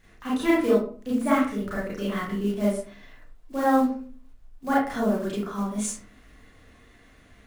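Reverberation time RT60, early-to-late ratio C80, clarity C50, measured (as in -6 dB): 0.45 s, 7.5 dB, 2.0 dB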